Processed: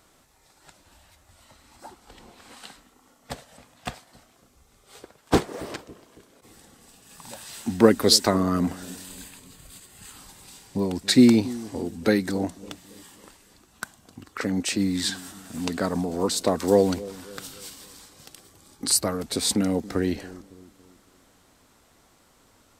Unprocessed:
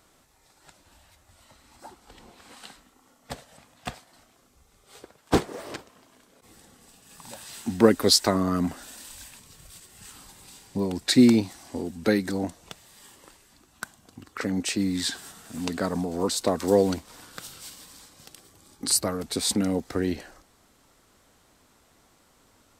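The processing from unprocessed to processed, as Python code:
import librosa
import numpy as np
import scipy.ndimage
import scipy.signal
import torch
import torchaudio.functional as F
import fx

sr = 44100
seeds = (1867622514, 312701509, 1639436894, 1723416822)

p1 = fx.notch(x, sr, hz=5600.0, q=6.3, at=(9.05, 10.17))
p2 = p1 + fx.echo_bbd(p1, sr, ms=277, stages=1024, feedback_pct=45, wet_db=-18.0, dry=0)
y = p2 * librosa.db_to_amplitude(1.5)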